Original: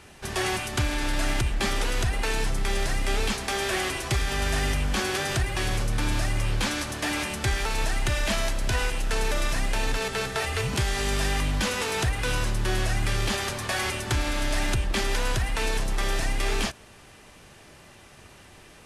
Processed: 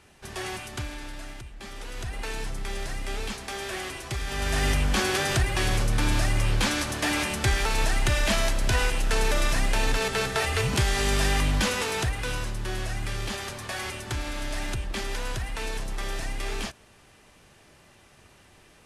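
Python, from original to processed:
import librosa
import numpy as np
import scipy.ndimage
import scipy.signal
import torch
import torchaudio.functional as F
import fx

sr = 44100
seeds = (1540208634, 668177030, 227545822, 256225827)

y = fx.gain(x, sr, db=fx.line((0.72, -7.0), (1.51, -17.5), (2.2, -6.5), (4.15, -6.5), (4.68, 2.0), (11.57, 2.0), (12.53, -5.5)))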